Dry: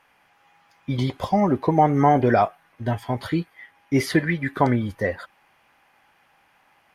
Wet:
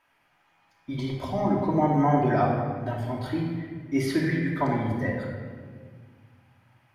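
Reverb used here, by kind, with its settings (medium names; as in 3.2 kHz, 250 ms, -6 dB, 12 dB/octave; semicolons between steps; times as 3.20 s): simulated room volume 2300 m³, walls mixed, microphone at 2.8 m; trim -9.5 dB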